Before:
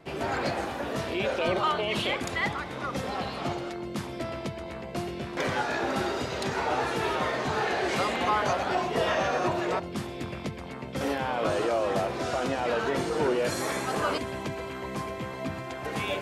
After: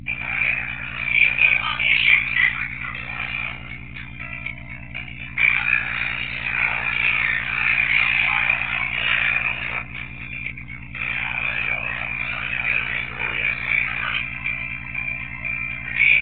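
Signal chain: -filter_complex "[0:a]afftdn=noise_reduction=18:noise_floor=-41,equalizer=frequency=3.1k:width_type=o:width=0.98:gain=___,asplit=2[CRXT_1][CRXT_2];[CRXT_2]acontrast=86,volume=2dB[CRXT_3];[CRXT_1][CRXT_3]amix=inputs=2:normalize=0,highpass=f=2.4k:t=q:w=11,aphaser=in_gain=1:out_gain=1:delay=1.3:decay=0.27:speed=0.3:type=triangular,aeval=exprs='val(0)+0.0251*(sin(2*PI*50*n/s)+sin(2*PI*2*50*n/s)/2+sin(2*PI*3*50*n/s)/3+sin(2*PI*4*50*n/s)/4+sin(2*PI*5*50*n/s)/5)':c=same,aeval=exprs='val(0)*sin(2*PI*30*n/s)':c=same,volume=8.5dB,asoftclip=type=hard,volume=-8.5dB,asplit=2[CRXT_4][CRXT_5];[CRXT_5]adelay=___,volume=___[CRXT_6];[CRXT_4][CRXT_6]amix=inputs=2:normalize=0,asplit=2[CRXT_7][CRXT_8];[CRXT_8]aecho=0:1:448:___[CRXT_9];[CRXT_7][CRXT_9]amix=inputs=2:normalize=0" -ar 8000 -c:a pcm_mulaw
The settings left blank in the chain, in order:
-9.5, 32, -4dB, 0.126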